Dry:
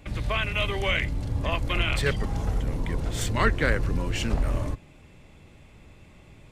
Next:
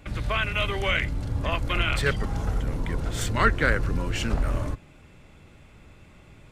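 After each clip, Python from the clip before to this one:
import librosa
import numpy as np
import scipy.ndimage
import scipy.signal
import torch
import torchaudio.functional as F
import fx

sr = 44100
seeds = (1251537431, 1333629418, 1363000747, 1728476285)

y = fx.peak_eq(x, sr, hz=1400.0, db=6.0, octaves=0.39)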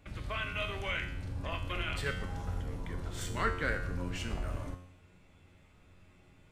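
y = fx.comb_fb(x, sr, f0_hz=90.0, decay_s=0.74, harmonics='all', damping=0.0, mix_pct=80)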